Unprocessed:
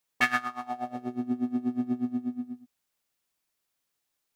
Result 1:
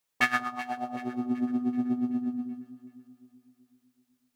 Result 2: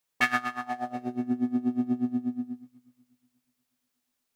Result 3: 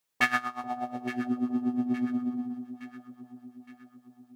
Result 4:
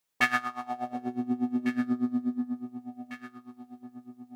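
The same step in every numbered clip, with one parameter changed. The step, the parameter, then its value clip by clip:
echo with dull and thin repeats by turns, time: 0.19, 0.121, 0.433, 0.725 s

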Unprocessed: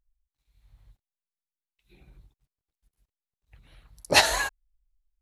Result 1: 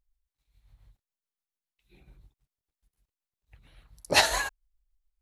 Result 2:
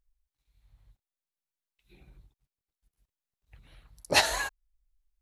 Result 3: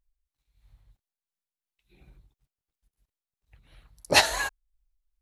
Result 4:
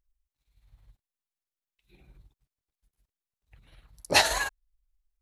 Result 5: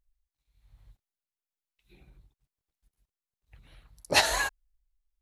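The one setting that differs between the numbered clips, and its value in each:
tremolo, rate: 7.1, 0.58, 2.9, 19, 1.1 Hz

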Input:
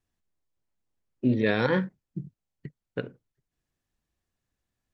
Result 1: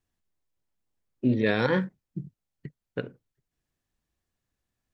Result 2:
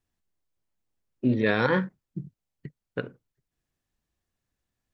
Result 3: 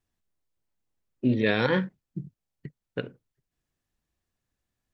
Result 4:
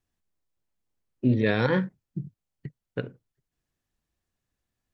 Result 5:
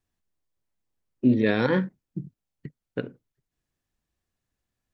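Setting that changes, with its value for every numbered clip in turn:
dynamic EQ, frequency: 7700, 1200, 3000, 110, 270 Hz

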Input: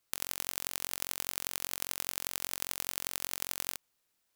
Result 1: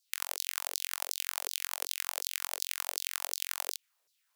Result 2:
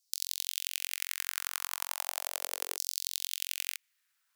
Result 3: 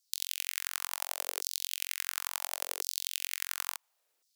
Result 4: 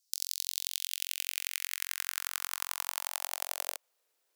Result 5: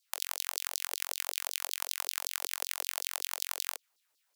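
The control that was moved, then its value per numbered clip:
LFO high-pass, rate: 2.7, 0.36, 0.71, 0.23, 5.3 Hz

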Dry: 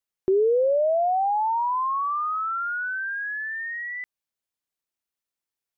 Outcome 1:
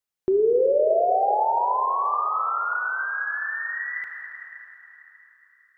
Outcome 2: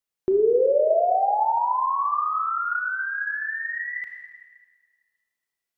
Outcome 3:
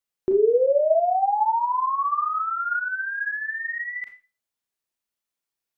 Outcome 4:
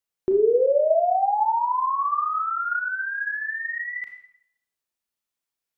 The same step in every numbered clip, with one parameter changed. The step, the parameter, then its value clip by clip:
Schroeder reverb, RT60: 3.8, 1.6, 0.32, 0.67 s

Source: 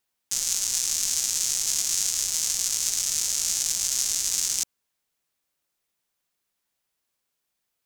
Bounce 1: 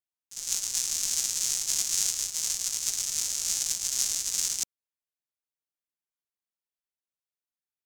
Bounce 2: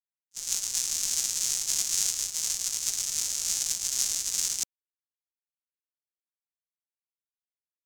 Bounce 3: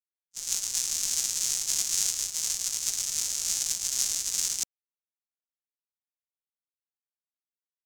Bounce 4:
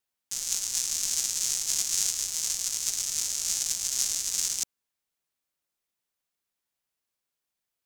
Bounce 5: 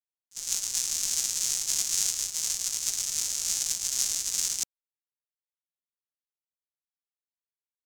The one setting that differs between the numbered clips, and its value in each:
gate, range: -19, -46, -59, -6, -31 dB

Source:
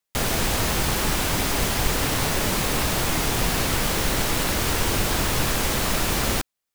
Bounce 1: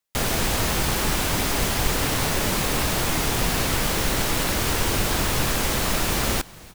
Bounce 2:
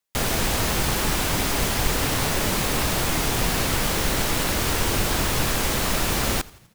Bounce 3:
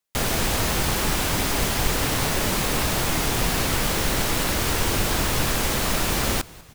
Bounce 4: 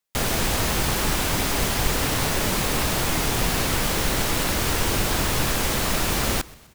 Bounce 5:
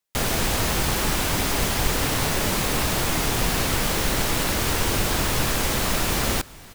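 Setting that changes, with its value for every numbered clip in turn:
frequency-shifting echo, time: 298, 84, 195, 127, 462 ms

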